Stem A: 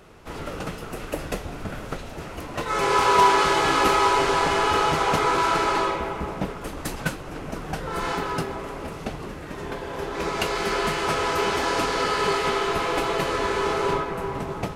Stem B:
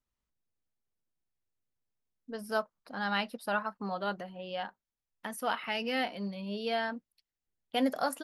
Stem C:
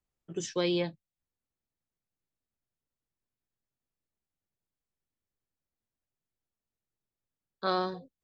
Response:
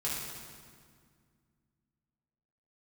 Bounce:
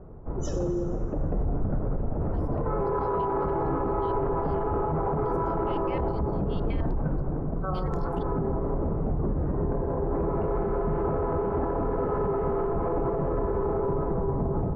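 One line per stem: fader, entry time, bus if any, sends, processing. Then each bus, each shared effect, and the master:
+2.0 dB, 0.00 s, bus A, send −16 dB, Bessel low-pass filter 660 Hz, order 4; low-shelf EQ 120 Hz +10.5 dB; automatic ducking −9 dB, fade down 0.75 s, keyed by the third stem
−2.5 dB, 0.00 s, bus A, no send, brickwall limiter −24.5 dBFS, peak gain reduction 8 dB; band-pass on a step sequencer 9.7 Hz 540–6,700 Hz
−4.0 dB, 0.00 s, no bus, send −5 dB, gate on every frequency bin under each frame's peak −10 dB strong
bus A: 0.0 dB, automatic gain control gain up to 6 dB; brickwall limiter −13.5 dBFS, peak gain reduction 10.5 dB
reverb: on, RT60 2.0 s, pre-delay 3 ms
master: brickwall limiter −19.5 dBFS, peak gain reduction 9 dB

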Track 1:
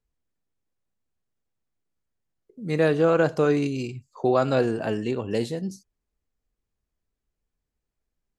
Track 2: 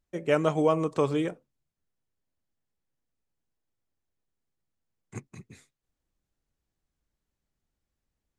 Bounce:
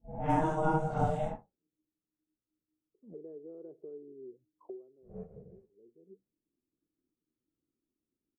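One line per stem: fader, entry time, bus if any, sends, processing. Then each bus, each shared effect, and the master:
−11.0 dB, 0.45 s, no send, envelope filter 390–1,300 Hz, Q 14, down, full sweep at −25 dBFS; multiband upward and downward compressor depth 100%; automatic ducking −14 dB, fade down 0.35 s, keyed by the second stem
0.0 dB, 0.00 s, no send, random phases in long frames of 200 ms; parametric band 2,800 Hz −11.5 dB 2.3 octaves; ring modulation 310 Hz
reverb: not used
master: low-pass that shuts in the quiet parts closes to 310 Hz, open at −26 dBFS

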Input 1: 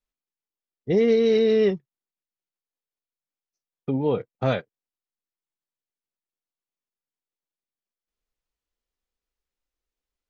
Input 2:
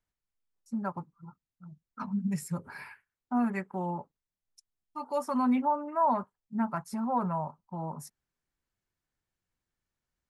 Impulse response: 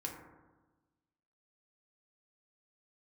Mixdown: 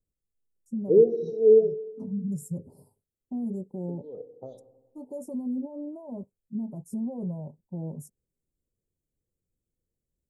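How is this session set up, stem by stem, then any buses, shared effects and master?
+3.0 dB, 0.00 s, send −5.5 dB, LFO wah 1.8 Hz 380–3,800 Hz, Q 3
+2.0 dB, 0.00 s, no send, tilt shelving filter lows +3 dB, about 1,400 Hz; brickwall limiter −26 dBFS, peak gain reduction 11.5 dB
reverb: on, RT60 1.2 s, pre-delay 3 ms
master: elliptic band-stop filter 510–7,400 Hz, stop band 70 dB

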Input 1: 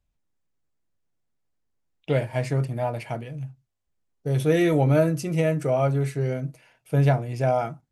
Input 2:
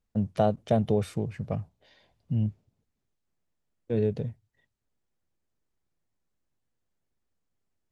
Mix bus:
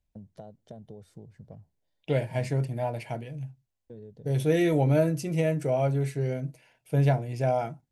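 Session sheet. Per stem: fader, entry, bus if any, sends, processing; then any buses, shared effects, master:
−3.0 dB, 0.00 s, no send, no processing
−12.0 dB, 0.00 s, no send, noise gate −54 dBFS, range −13 dB; parametric band 2,500 Hz −12.5 dB 0.56 octaves; downward compressor 5 to 1, threshold −30 dBFS, peak gain reduction 11 dB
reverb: not used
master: parametric band 1,400 Hz −2.5 dB; notch filter 1,200 Hz, Q 5.9

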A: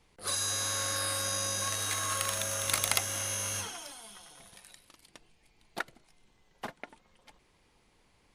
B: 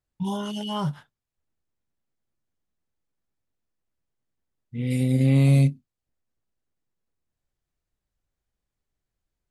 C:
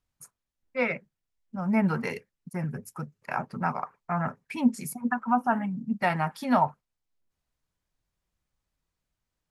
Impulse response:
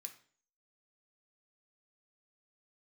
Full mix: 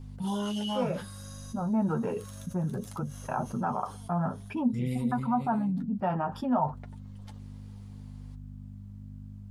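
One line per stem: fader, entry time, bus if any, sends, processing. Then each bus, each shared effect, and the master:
−14.0 dB, 0.00 s, no send, parametric band 2,300 Hz −7.5 dB 0.67 octaves; downward compressor 6 to 1, threshold −41 dBFS, peak gain reduction 17.5 dB; automatic ducking −10 dB, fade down 1.10 s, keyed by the third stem
−13.0 dB, 0.00 s, no send, compressor whose output falls as the input rises −27 dBFS, ratio −1
−2.5 dB, 0.00 s, no send, mains hum 50 Hz, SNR 26 dB; moving average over 21 samples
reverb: not used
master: flanger 0.6 Hz, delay 7.6 ms, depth 3.7 ms, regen −29%; envelope flattener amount 50%

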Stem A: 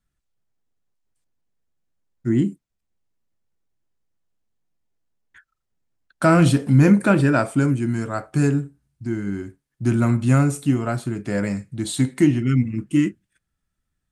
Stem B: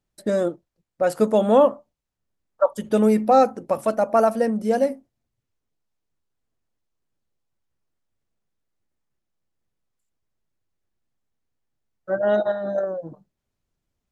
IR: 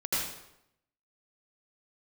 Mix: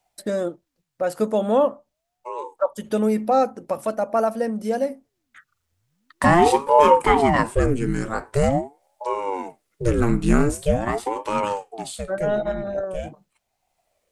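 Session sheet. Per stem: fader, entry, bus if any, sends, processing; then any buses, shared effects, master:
+2.5 dB, 0.00 s, no send, ring modulator whose carrier an LFO sweeps 410 Hz, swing 80%, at 0.44 Hz; automatic ducking −14 dB, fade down 0.55 s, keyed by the second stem
−3.0 dB, 0.00 s, no send, no processing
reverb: not used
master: one half of a high-frequency compander encoder only

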